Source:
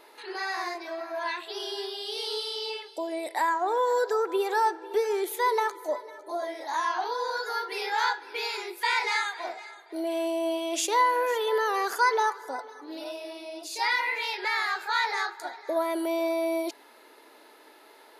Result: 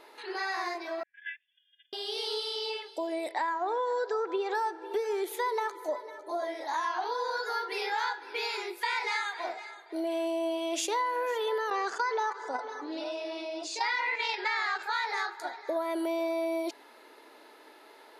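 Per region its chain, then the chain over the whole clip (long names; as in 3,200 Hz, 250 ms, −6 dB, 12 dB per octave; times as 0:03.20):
0:01.03–0:01.93: noise gate −31 dBFS, range −32 dB + linear-phase brick-wall band-pass 1,500–3,600 Hz
0:03.31–0:04.55: low-pass filter 6,500 Hz 24 dB per octave + one half of a high-frequency compander decoder only
0:11.70–0:14.83: noise gate −32 dBFS, range −14 dB + elliptic band-pass filter 170–7,600 Hz + envelope flattener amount 50%
whole clip: high-shelf EQ 8,900 Hz −8 dB; downward compressor 4 to 1, threshold −28 dBFS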